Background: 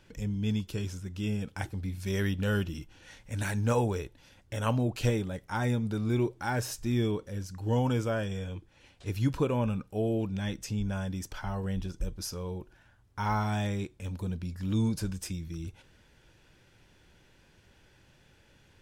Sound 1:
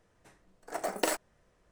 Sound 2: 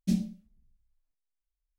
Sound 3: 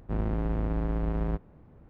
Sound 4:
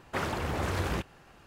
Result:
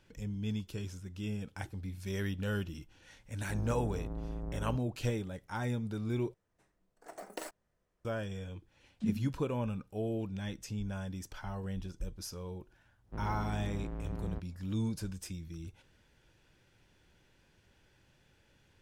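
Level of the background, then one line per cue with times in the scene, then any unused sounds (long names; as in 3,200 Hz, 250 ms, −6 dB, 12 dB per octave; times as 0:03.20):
background −6 dB
0:03.40: mix in 3 −10.5 dB + low-pass filter 1,100 Hz
0:06.34: overwrite with 1 −13.5 dB + low-shelf EQ 350 Hz +2.5 dB
0:08.95: mix in 2 −6 dB + three sine waves on the formant tracks
0:13.03: mix in 3 −11 dB, fades 0.10 s
not used: 4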